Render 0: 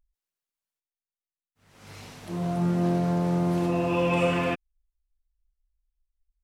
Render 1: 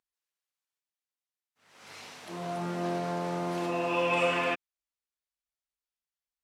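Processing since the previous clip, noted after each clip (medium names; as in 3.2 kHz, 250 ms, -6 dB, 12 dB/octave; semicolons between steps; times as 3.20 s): frequency weighting A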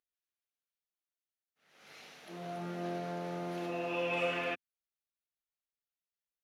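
graphic EQ with 31 bands 100 Hz -11 dB, 250 Hz -3 dB, 1 kHz -9 dB, 5 kHz -3 dB, 8 kHz -11 dB; trim -5.5 dB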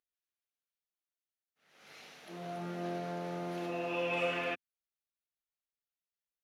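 no audible change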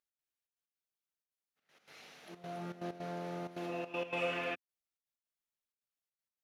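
trance gate "x.xxx.x.xxxx" 160 bpm -12 dB; trim -2 dB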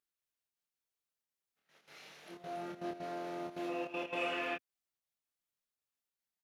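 doubling 26 ms -2.5 dB; trim -1.5 dB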